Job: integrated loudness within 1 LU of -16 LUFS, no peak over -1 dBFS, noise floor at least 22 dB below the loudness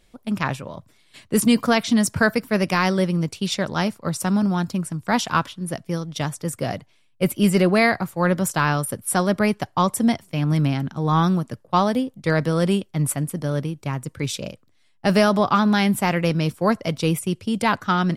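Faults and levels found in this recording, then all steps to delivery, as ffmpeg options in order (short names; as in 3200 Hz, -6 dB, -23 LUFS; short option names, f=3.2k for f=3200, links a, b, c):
loudness -22.0 LUFS; peak -5.5 dBFS; loudness target -16.0 LUFS
-> -af "volume=6dB,alimiter=limit=-1dB:level=0:latency=1"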